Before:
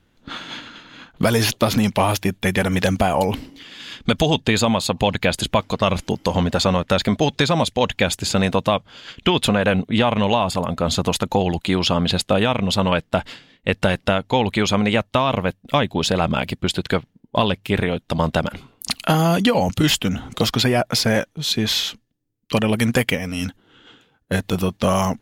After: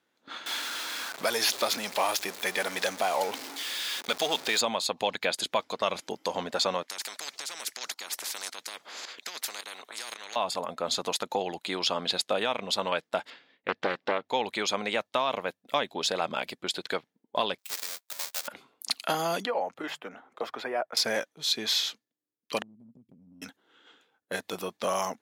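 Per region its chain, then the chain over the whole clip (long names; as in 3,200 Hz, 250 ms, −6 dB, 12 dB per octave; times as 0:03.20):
0:00.46–0:04.61: converter with a step at zero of −22.5 dBFS + low-shelf EQ 280 Hz −10 dB
0:06.83–0:10.36: high-pass filter 370 Hz + shaped tremolo saw up 1.8 Hz, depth 85% + every bin compressed towards the loudest bin 10 to 1
0:13.30–0:14.29: low-pass filter 3,600 Hz + highs frequency-modulated by the lows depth 0.54 ms
0:17.58–0:18.48: each half-wave held at its own peak + bad sample-rate conversion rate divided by 2×, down filtered, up hold + first difference
0:19.45–0:20.97: mains-hum notches 50/100/150 Hz + noise gate −31 dBFS, range −6 dB + three-way crossover with the lows and the highs turned down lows −13 dB, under 340 Hz, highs −20 dB, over 2,100 Hz
0:22.62–0:23.42: inverse Chebyshev low-pass filter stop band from 610 Hz, stop band 50 dB + downward compressor, threshold −30 dBFS
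whole clip: dynamic equaliser 4,600 Hz, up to +4 dB, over −34 dBFS, Q 1.1; high-pass filter 410 Hz 12 dB per octave; parametric band 2,900 Hz −4.5 dB 0.27 octaves; level −8 dB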